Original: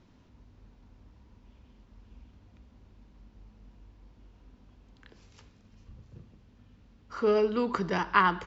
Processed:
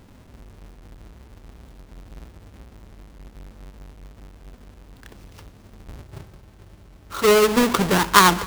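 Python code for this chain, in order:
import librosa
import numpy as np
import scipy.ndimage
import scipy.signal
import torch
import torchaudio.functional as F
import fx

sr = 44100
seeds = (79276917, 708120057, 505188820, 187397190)

y = fx.halfwave_hold(x, sr)
y = fx.notch_comb(y, sr, f0_hz=240.0, at=(6.05, 7.57))
y = y + 10.0 ** (-21.0 / 20.0) * np.pad(y, (int(230 * sr / 1000.0), 0))[:len(y)]
y = y * librosa.db_to_amplitude(6.5)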